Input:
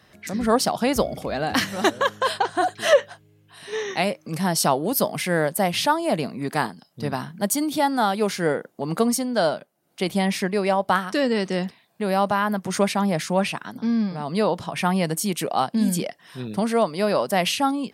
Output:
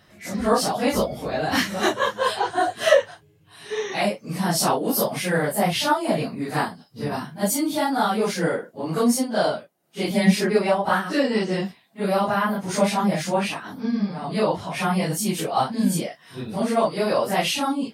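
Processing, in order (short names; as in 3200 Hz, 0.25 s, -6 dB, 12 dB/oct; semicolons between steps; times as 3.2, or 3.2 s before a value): phase scrambler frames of 0.1 s; 10.1–10.59 comb 4.8 ms, depth 76%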